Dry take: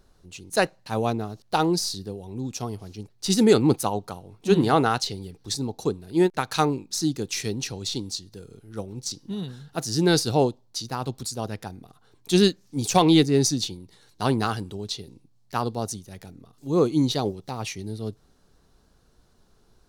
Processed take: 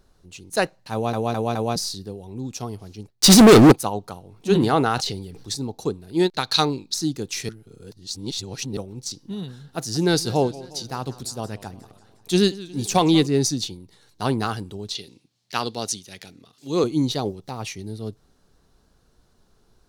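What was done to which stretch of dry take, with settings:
0.92 s: stutter in place 0.21 s, 4 plays
3.10–3.72 s: waveshaping leveller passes 5
4.34–5.53 s: decay stretcher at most 50 dB/s
6.19–6.94 s: peaking EQ 4.1 kHz +14 dB 0.68 oct
7.49–8.77 s: reverse
9.46–13.27 s: modulated delay 179 ms, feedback 58%, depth 168 cents, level -18.5 dB
14.95–16.84 s: frequency weighting D

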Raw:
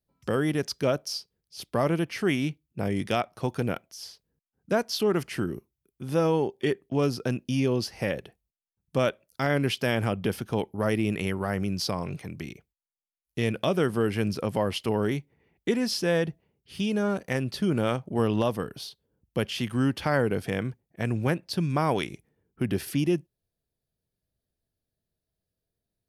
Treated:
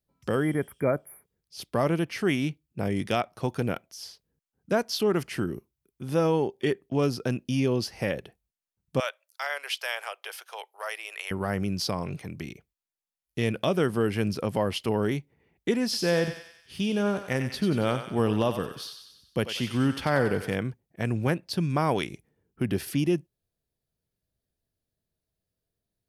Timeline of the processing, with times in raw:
0.45–1.34 s: spectral replace 2.4–9.7 kHz
9.00–11.31 s: Bessel high-pass 1 kHz, order 8
15.84–20.56 s: thinning echo 93 ms, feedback 57%, high-pass 810 Hz, level -7 dB

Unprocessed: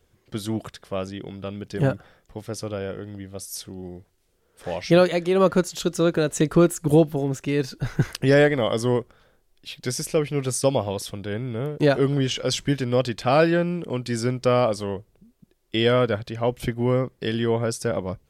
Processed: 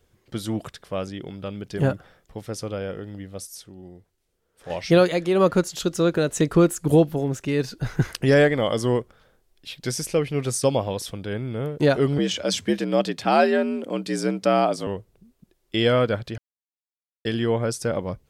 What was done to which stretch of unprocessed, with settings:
3.47–4.70 s: gain -6.5 dB
12.18–14.87 s: frequency shift +66 Hz
16.38–17.25 s: mute

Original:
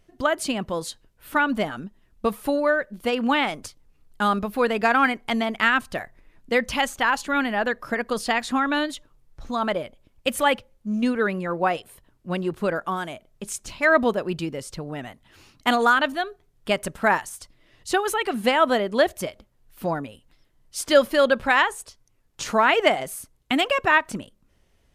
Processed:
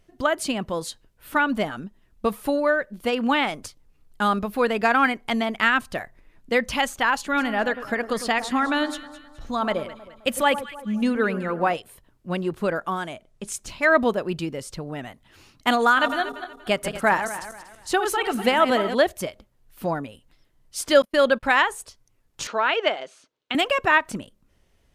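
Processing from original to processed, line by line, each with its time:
7.16–11.74 s: echo whose repeats swap between lows and highs 105 ms, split 1.3 kHz, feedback 62%, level -11 dB
12.97–13.52 s: low-pass 11 kHz 24 dB/octave
15.85–18.95 s: backward echo that repeats 119 ms, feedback 55%, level -9.5 dB
21.02–21.43 s: gate -28 dBFS, range -37 dB
22.47–23.55 s: cabinet simulation 460–5200 Hz, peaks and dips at 760 Hz -7 dB, 1.1 kHz -4 dB, 2 kHz -6 dB, 5 kHz -4 dB

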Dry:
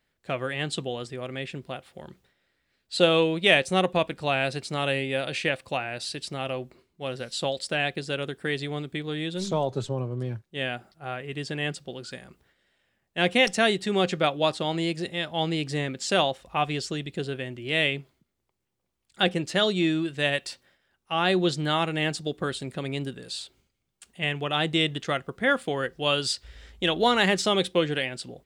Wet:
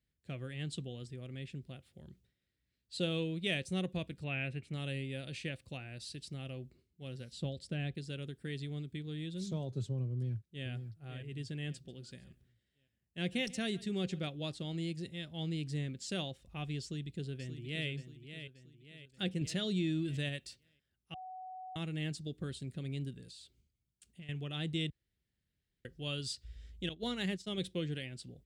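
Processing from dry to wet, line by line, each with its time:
4.24–4.74 s: resonant high shelf 3.4 kHz -11.5 dB, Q 3
7.32–7.95 s: tilt EQ -2 dB/octave
10.10–10.67 s: echo throw 550 ms, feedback 35%, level -8.5 dB
11.71–14.28 s: delay 141 ms -20.5 dB
16.81–17.89 s: echo throw 580 ms, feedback 45%, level -9.5 dB
19.41–20.29 s: level flattener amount 50%
21.14–21.76 s: bleep 746 Hz -20.5 dBFS
23.20–24.29 s: compression, threshold -36 dBFS
24.90–25.85 s: room tone
26.89–27.58 s: expander -21 dBFS
whole clip: high-pass 57 Hz; amplifier tone stack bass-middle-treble 10-0-1; trim +8.5 dB

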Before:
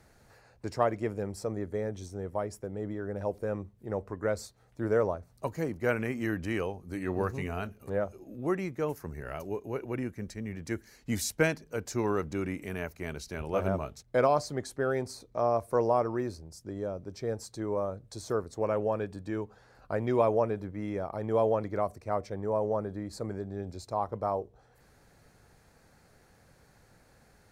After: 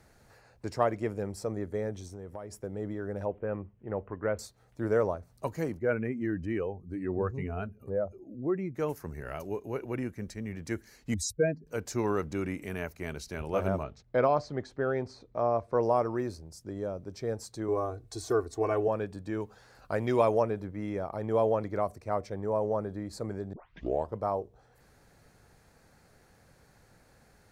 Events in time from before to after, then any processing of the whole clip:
2.00–2.59 s: compression 4:1, threshold -38 dBFS
3.25–4.39 s: elliptic low-pass 3 kHz
5.79–8.75 s: spectral contrast enhancement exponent 1.5
11.14–11.67 s: spectral contrast enhancement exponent 2.5
13.83–15.83 s: distance through air 170 m
17.68–18.88 s: comb 2.7 ms, depth 90%
19.40–20.43 s: treble shelf 2.2 kHz +7.5 dB
23.53 s: tape start 0.62 s

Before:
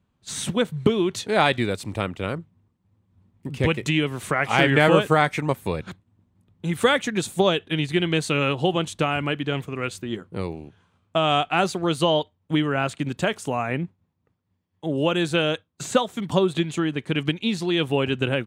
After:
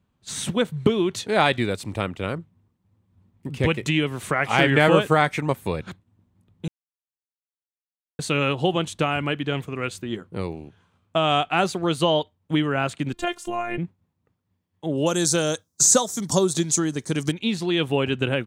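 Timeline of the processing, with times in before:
6.68–8.19 s: mute
13.13–13.78 s: robot voice 351 Hz
15.06–17.32 s: resonant high shelf 4.1 kHz +13.5 dB, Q 3

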